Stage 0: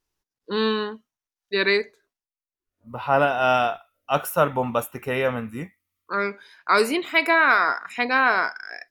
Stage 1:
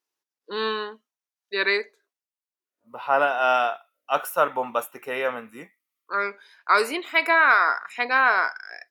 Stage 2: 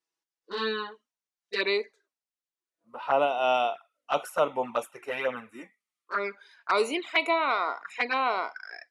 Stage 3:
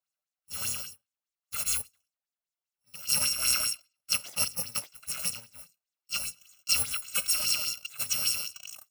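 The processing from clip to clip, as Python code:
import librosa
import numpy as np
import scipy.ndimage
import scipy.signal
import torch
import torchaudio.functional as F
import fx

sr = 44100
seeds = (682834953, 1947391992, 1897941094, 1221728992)

y1 = scipy.signal.sosfilt(scipy.signal.butter(2, 360.0, 'highpass', fs=sr, output='sos'), x)
y1 = fx.dynamic_eq(y1, sr, hz=1300.0, q=0.87, threshold_db=-29.0, ratio=4.0, max_db=4)
y1 = F.gain(torch.from_numpy(y1), -3.0).numpy()
y2 = scipy.signal.sosfilt(scipy.signal.butter(4, 10000.0, 'lowpass', fs=sr, output='sos'), y1)
y2 = fx.env_flanger(y2, sr, rest_ms=6.1, full_db=-20.0)
y3 = fx.bit_reversed(y2, sr, seeds[0], block=128)
y3 = fx.bell_lfo(y3, sr, hz=5.0, low_hz=610.0, high_hz=7900.0, db=12)
y3 = F.gain(torch.from_numpy(y3), -4.5).numpy()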